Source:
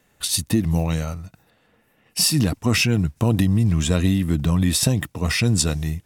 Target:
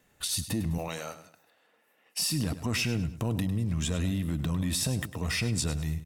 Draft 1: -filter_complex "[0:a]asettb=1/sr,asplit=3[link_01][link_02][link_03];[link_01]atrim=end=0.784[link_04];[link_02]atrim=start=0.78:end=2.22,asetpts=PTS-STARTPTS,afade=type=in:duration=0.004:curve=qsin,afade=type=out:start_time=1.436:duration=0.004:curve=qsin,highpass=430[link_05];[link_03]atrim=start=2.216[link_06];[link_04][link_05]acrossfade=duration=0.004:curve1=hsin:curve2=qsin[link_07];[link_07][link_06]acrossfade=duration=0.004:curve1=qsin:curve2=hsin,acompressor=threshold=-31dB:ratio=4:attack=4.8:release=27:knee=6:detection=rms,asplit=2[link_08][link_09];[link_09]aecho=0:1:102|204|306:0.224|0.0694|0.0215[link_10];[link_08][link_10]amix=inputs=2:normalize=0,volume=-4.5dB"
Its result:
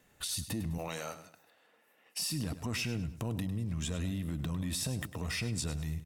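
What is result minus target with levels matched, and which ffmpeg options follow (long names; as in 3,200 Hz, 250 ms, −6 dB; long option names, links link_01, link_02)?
downward compressor: peak gain reduction +6 dB
-filter_complex "[0:a]asettb=1/sr,asplit=3[link_01][link_02][link_03];[link_01]atrim=end=0.784[link_04];[link_02]atrim=start=0.78:end=2.22,asetpts=PTS-STARTPTS,afade=type=in:duration=0.004:curve=qsin,afade=type=out:start_time=1.436:duration=0.004:curve=qsin,highpass=430[link_05];[link_03]atrim=start=2.216[link_06];[link_04][link_05]acrossfade=duration=0.004:curve1=hsin:curve2=qsin[link_07];[link_07][link_06]acrossfade=duration=0.004:curve1=qsin:curve2=hsin,acompressor=threshold=-23dB:ratio=4:attack=4.8:release=27:knee=6:detection=rms,asplit=2[link_08][link_09];[link_09]aecho=0:1:102|204|306:0.224|0.0694|0.0215[link_10];[link_08][link_10]amix=inputs=2:normalize=0,volume=-4.5dB"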